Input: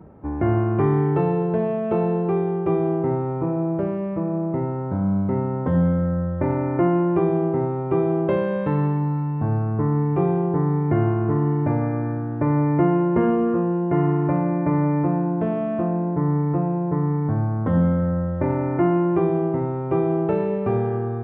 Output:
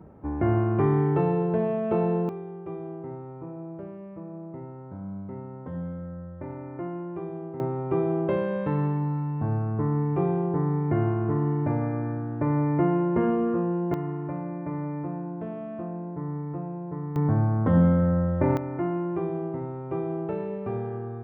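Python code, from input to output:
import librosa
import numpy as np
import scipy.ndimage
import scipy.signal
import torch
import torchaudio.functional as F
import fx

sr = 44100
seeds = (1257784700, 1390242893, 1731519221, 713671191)

y = fx.gain(x, sr, db=fx.steps((0.0, -3.0), (2.29, -15.0), (7.6, -4.5), (13.94, -11.5), (17.16, -0.5), (18.57, -9.0)))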